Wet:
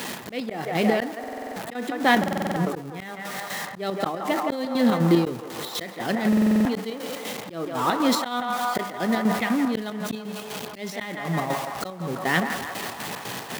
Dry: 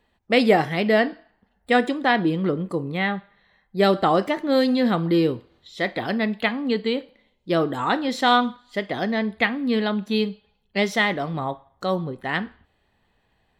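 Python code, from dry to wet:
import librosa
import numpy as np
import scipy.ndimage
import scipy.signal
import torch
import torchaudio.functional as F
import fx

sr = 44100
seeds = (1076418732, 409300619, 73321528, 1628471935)

y = x + 0.5 * 10.0 ** (-27.0 / 20.0) * np.sign(x)
y = fx.low_shelf(y, sr, hz=190.0, db=6.0)
y = fx.hum_notches(y, sr, base_hz=50, count=4)
y = fx.chopper(y, sr, hz=4.0, depth_pct=65, duty_pct=60)
y = scipy.signal.sosfilt(scipy.signal.butter(4, 140.0, 'highpass', fs=sr, output='sos'), y)
y = fx.high_shelf(y, sr, hz=6600.0, db=5.0)
y = fx.echo_banded(y, sr, ms=167, feedback_pct=79, hz=980.0, wet_db=-7)
y = fx.auto_swell(y, sr, attack_ms=434.0)
y = fx.buffer_glitch(y, sr, at_s=(1.19, 2.19, 6.28), block=2048, repeats=7)
y = fx.sustainer(y, sr, db_per_s=86.0)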